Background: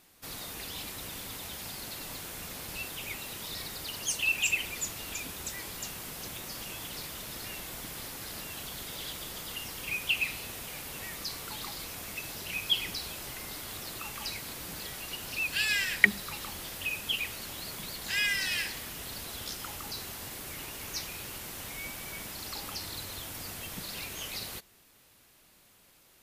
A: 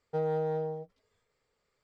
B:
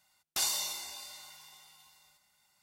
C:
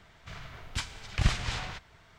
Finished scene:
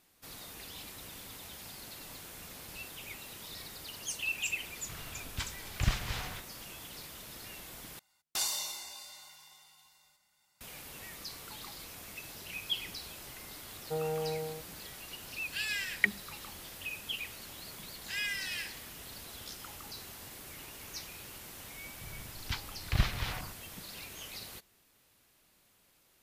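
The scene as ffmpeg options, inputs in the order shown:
ffmpeg -i bed.wav -i cue0.wav -i cue1.wav -i cue2.wav -filter_complex "[3:a]asplit=2[link_01][link_02];[0:a]volume=-6.5dB[link_03];[link_02]afwtdn=0.01[link_04];[link_03]asplit=2[link_05][link_06];[link_05]atrim=end=7.994[link_07];[2:a]atrim=end=2.62,asetpts=PTS-STARTPTS,volume=-2dB[link_08];[link_06]atrim=start=10.606[link_09];[link_01]atrim=end=2.18,asetpts=PTS-STARTPTS,volume=-4dB,afade=type=in:duration=0.004:curve=hsin,afade=type=out:start_time=2.176:duration=0.004:curve=hsin,adelay=4620[link_10];[1:a]atrim=end=1.83,asetpts=PTS-STARTPTS,volume=-4dB,afade=type=in:duration=0.004:curve=hsin,afade=type=out:start_time=1.826:duration=0.004:curve=hsin,adelay=13770[link_11];[link_04]atrim=end=2.18,asetpts=PTS-STARTPTS,volume=-2.5dB,afade=type=in:duration=0.004:curve=hsin,afade=type=out:start_time=2.176:duration=0.004:curve=hsin,adelay=21740[link_12];[link_07][link_08]acrossfade=duration=0.004:curve1=hsin:curve2=hsin[link_13];[link_13][link_09]acrossfade=duration=0.004:curve1=hsin:curve2=hsin[link_14];[link_14][link_10][link_11][link_12]amix=inputs=4:normalize=0" out.wav

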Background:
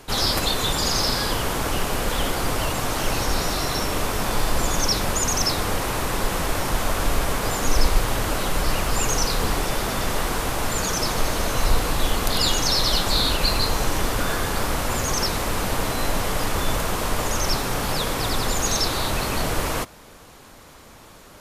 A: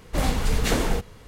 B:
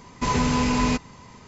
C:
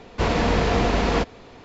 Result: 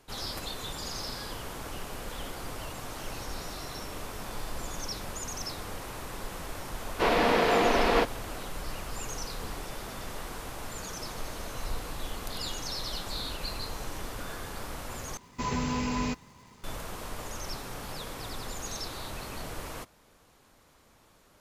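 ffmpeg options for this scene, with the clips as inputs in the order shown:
ffmpeg -i bed.wav -i cue0.wav -i cue1.wav -i cue2.wav -filter_complex "[0:a]volume=-15dB[link_01];[3:a]highpass=310,lowpass=4800[link_02];[2:a]acrusher=bits=7:mix=0:aa=0.5[link_03];[link_01]asplit=2[link_04][link_05];[link_04]atrim=end=15.174[link_06];[link_03]atrim=end=1.47,asetpts=PTS-STARTPTS,volume=-8.5dB[link_07];[link_05]atrim=start=16.636[link_08];[link_02]atrim=end=1.64,asetpts=PTS-STARTPTS,volume=-0.5dB,afade=type=in:duration=0.004:curve=hsin,afade=type=out:start_time=1.636:duration=0.004:curve=hsin,adelay=6810[link_09];[link_06][link_07]acrossfade=duration=0.004:curve1=hsin:curve2=hsin[link_10];[link_10][link_08]acrossfade=duration=0.004:curve1=hsin:curve2=hsin[link_11];[link_11][link_09]amix=inputs=2:normalize=0" out.wav

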